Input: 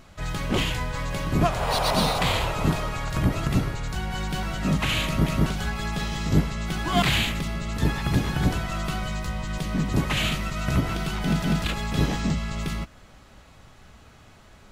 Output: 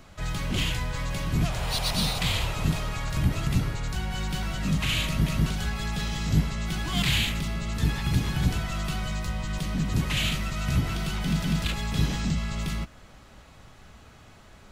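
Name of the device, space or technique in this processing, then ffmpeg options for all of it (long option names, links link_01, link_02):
one-band saturation: -filter_complex "[0:a]acrossover=split=200|2100[link_01][link_02][link_03];[link_02]asoftclip=type=tanh:threshold=-36dB[link_04];[link_01][link_04][link_03]amix=inputs=3:normalize=0"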